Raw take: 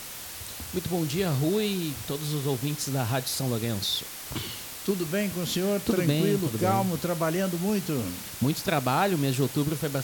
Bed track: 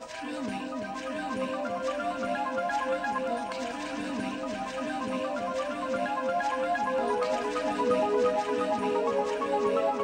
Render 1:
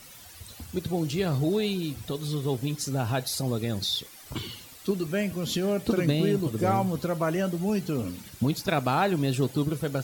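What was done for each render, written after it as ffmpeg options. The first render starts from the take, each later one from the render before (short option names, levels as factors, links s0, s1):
-af "afftdn=nr=12:nf=-40"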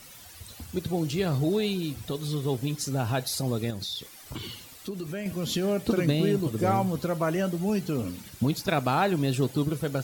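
-filter_complex "[0:a]asettb=1/sr,asplit=3[s0][s1][s2];[s0]atrim=end=3.704[s3];[s1]atrim=start=3.7:end=5.26,asetpts=PTS-STARTPTS,afade=t=in:d=0.004:c=qsin,afade=t=out:st=1.556:d=0.004:c=qsin,acompressor=threshold=0.0251:ratio=3:attack=3.2:release=140:knee=1:detection=peak[s4];[s2]atrim=start=5.256[s5];[s3][s4]acrossfade=d=0.004:c1=hsin:c2=qsin[s6];[s6][s5]acrossfade=d=0.004:c1=qsin:c2=hsin"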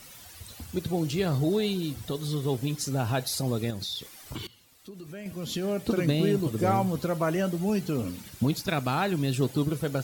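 -filter_complex "[0:a]asettb=1/sr,asplit=3[s0][s1][s2];[s0]atrim=end=1.264[s3];[s1]atrim=start=1.26:end=2.44,asetpts=PTS-STARTPTS,afade=t=in:d=0.004:c=qsin,afade=t=out:st=1.176:d=0.004:c=qsin,bandreject=f=2500:w=12[s4];[s2]atrim=start=2.436[s5];[s3][s4]acrossfade=d=0.004:c1=hsin:c2=qsin[s6];[s6][s5]acrossfade=d=0.004:c1=qsin:c2=hsin,asettb=1/sr,asplit=3[s7][s8][s9];[s7]atrim=end=8.614[s10];[s8]atrim=start=8.61:end=9.41,asetpts=PTS-STARTPTS,afade=t=in:d=0.004:c=qsin,afade=t=out:st=0.796:d=0.004:c=qsin,equalizer=f=650:t=o:w=2:g=-4.5[s11];[s9]atrim=start=9.406[s12];[s10][s11]acrossfade=d=0.004:c1=hsin:c2=qsin[s13];[s13][s12]acrossfade=d=0.004:c1=qsin:c2=hsin,asplit=2[s14][s15];[s14]atrim=end=4.47,asetpts=PTS-STARTPTS,afade=t=out:st=4.466:d=0.004:c=hsin:silence=0.125893[s16];[s15]atrim=start=4.47,asetpts=PTS-STARTPTS,afade=t=in:d=1.77:silence=0.125893[s17];[s16][s17]concat=n=2:v=0:a=1"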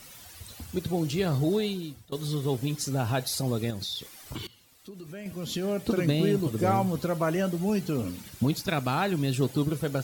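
-filter_complex "[0:a]asplit=2[s0][s1];[s0]atrim=end=2.12,asetpts=PTS-STARTPTS,afade=t=out:st=1.55:d=0.57:silence=0.0707946[s2];[s1]atrim=start=2.12,asetpts=PTS-STARTPTS,afade=t=in:d=0.004:c=hsin:silence=0.0707946[s3];[s2][s3]concat=n=2:v=0:a=1"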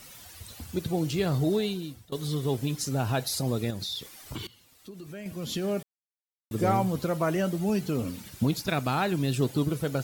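-filter_complex "[0:a]asplit=3[s0][s1][s2];[s0]atrim=end=5.83,asetpts=PTS-STARTPTS,afade=t=out:st=5.826:d=0.004:c=hsin[s3];[s1]atrim=start=5.83:end=6.51,asetpts=PTS-STARTPTS,volume=0[s4];[s2]atrim=start=6.51,asetpts=PTS-STARTPTS,afade=t=in:d=0.004:c=hsin[s5];[s3][s4][s5]concat=n=3:v=0:a=1"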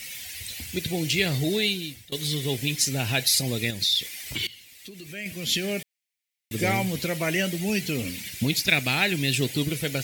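-af "highshelf=f=1600:t=q:w=3:g=9.5"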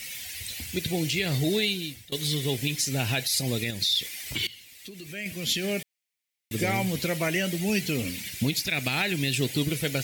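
-af "alimiter=limit=0.178:level=0:latency=1:release=117"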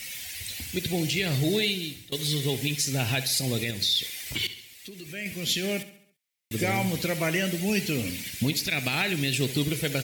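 -af "aecho=1:1:68|136|204|272|340:0.2|0.0978|0.0479|0.0235|0.0115"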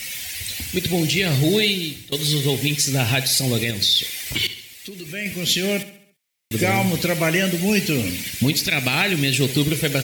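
-af "volume=2.24"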